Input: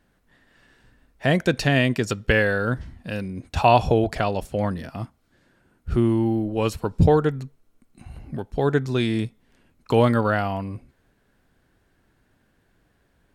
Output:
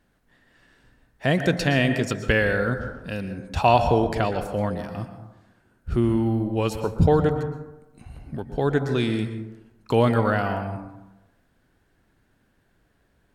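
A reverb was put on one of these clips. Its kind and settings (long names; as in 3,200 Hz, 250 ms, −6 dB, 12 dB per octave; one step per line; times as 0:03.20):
dense smooth reverb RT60 1 s, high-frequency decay 0.35×, pre-delay 105 ms, DRR 8 dB
level −1.5 dB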